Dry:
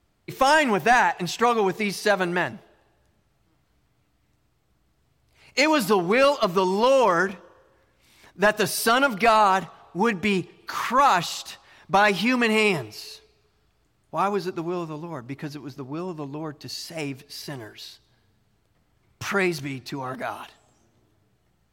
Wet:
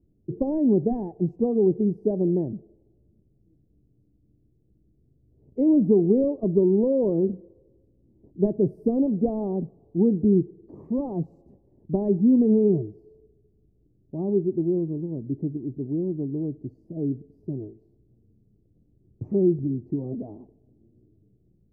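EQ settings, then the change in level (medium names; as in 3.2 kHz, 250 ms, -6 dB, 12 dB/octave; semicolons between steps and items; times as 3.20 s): inverse Chebyshev low-pass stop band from 1.3 kHz, stop band 60 dB; bass shelf 150 Hz -5.5 dB; +8.0 dB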